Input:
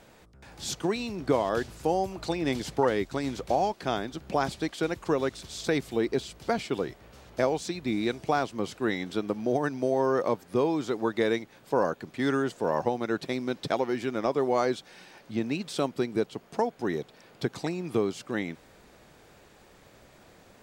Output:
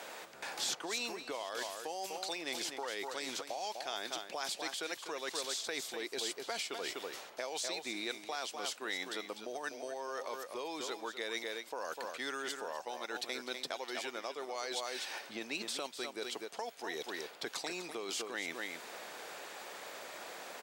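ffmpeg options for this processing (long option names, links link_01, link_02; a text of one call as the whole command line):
ffmpeg -i in.wav -filter_complex "[0:a]aecho=1:1:248:0.299,areverse,acompressor=threshold=-33dB:ratio=12,areverse,highpass=570,acrossover=split=2400|5200[link_01][link_02][link_03];[link_01]acompressor=threshold=-52dB:ratio=4[link_04];[link_02]acompressor=threshold=-53dB:ratio=4[link_05];[link_03]acompressor=threshold=-52dB:ratio=4[link_06];[link_04][link_05][link_06]amix=inputs=3:normalize=0,volume=11dB" out.wav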